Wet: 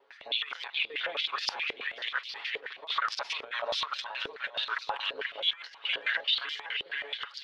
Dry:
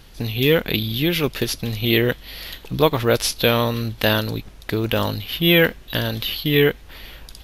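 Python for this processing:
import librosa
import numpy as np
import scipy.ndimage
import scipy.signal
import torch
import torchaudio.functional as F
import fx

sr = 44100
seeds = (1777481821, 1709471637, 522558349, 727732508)

y = fx.local_reverse(x, sr, ms=104.0)
y = fx.filter_lfo_highpass(y, sr, shape='saw_up', hz=3.9, low_hz=810.0, high_hz=2100.0, q=1.2)
y = 10.0 ** (-12.5 / 20.0) * np.tanh(y / 10.0 ** (-12.5 / 20.0))
y = fx.air_absorb(y, sr, metres=97.0)
y = y + 0.68 * np.pad(y, (int(7.2 * sr / 1000.0), 0))[:len(y)]
y = fx.echo_feedback(y, sr, ms=483, feedback_pct=49, wet_db=-8)
y = fx.over_compress(y, sr, threshold_db=-26.0, ratio=-0.5)
y = fx.filter_held_bandpass(y, sr, hz=9.4, low_hz=440.0, high_hz=5100.0)
y = y * librosa.db_to_amplitude(3.5)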